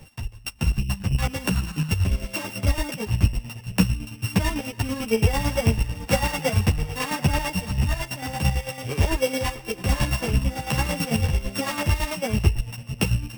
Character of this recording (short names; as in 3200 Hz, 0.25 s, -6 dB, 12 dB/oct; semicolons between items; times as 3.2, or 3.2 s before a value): a buzz of ramps at a fixed pitch in blocks of 16 samples; chopped level 9 Hz, depth 60%, duty 35%; a shimmering, thickened sound